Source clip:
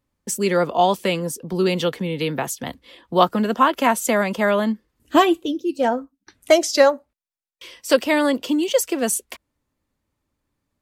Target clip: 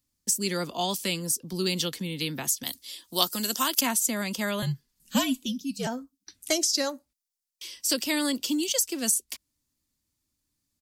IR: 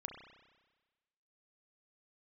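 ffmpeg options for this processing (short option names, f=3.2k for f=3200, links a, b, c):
-filter_complex "[0:a]firequalizer=gain_entry='entry(310,0);entry(450,-8);entry(4900,14)':delay=0.05:min_phase=1,acrossover=split=460[a][b];[b]acompressor=threshold=-16dB:ratio=4[c];[a][c]amix=inputs=2:normalize=0,asettb=1/sr,asplit=3[d][e][f];[d]atrim=end=2.634[g];[e]atrim=start=2.63:end=3.81,asetpts=PTS-STARTPTS,afade=t=in:d=0.004:c=qsin,afade=t=out:st=1.176:d=0.004:c=qsin,bass=f=250:g=-9,treble=f=4k:g=14[h];[f]atrim=start=3.806[i];[g][h]acrossfade=d=0.004:c1=hsin:c2=qsin[j];[j][i]acrossfade=d=0.004:c1=qsin:c2=hsin,asettb=1/sr,asplit=3[k][l][m];[k]atrim=end=4.624[n];[l]atrim=start=4.62:end=5.87,asetpts=PTS-STARTPTS,afade=t=in:d=0.004:c=qsin,afade=t=out:st=1.246:d=0.004:c=qsin,afreqshift=-74[o];[m]atrim=start=5.866[p];[n][o]acrossfade=d=0.004:c1=hsin:c2=qsin[q];[q][p]acrossfade=d=0.004:c1=qsin:c2=hsin,volume=-7dB"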